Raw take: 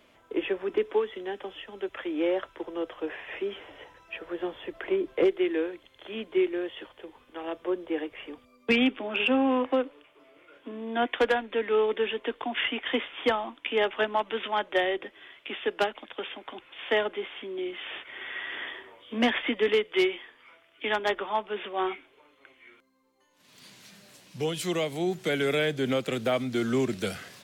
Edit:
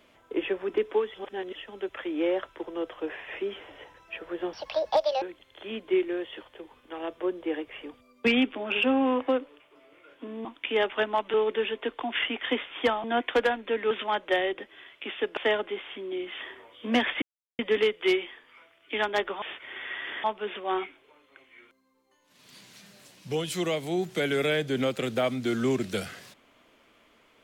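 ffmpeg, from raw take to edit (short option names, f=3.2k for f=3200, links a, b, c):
-filter_complex "[0:a]asplit=14[a][b][c][d][e][f][g][h][i][j][k][l][m][n];[a]atrim=end=1.142[o];[b]atrim=start=1.138:end=1.552,asetpts=PTS-STARTPTS,areverse[p];[c]atrim=start=1.548:end=4.534[q];[d]atrim=start=4.53:end=5.66,asetpts=PTS-STARTPTS,asetrate=72324,aresample=44100[r];[e]atrim=start=5.656:end=10.892[s];[f]atrim=start=13.458:end=14.352[t];[g]atrim=start=11.758:end=13.462[u];[h]atrim=start=10.888:end=11.762[v];[i]atrim=start=14.348:end=15.812[w];[j]atrim=start=16.828:end=17.872[x];[k]atrim=start=18.688:end=19.5,asetpts=PTS-STARTPTS,afade=t=out:st=0.808:d=0.004:c=hsin,apad=pad_dur=0.37[y];[l]atrim=start=19.5:end=21.332,asetpts=PTS-STARTPTS,afade=t=in:d=0.004:c=hsin[z];[m]atrim=start=17.868:end=18.692[aa];[n]atrim=start=21.328[ab];[o][p]acrossfade=d=0.004:c1=hsin:c2=hsin[ac];[ac][q]acrossfade=d=0.004:c1=hsin:c2=hsin[ad];[ad][r]acrossfade=d=0.004:c1=hsin:c2=hsin[ae];[ae][s]acrossfade=d=0.004:c1=hsin:c2=hsin[af];[af][t]acrossfade=d=0.004:c1=hsin:c2=hsin[ag];[ag][u]acrossfade=d=0.004:c1=hsin:c2=hsin[ah];[ah][v]acrossfade=d=0.004:c1=hsin:c2=hsin[ai];[ai][w]acrossfade=d=0.004:c1=hsin:c2=hsin[aj];[aj][x]acrossfade=d=0.004:c1=hsin:c2=hsin[ak];[y][z]concat=n=2:v=0:a=1[al];[ak][al]acrossfade=d=0.004:c1=hsin:c2=hsin[am];[am][aa]acrossfade=d=0.004:c1=hsin:c2=hsin[an];[an][ab]acrossfade=d=0.004:c1=hsin:c2=hsin"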